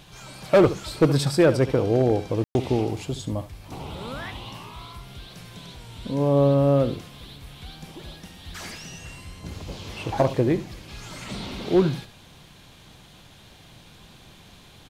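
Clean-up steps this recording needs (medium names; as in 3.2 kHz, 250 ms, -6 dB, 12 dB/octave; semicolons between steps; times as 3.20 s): clip repair -10.5 dBFS; room tone fill 2.44–2.55 s; inverse comb 71 ms -14 dB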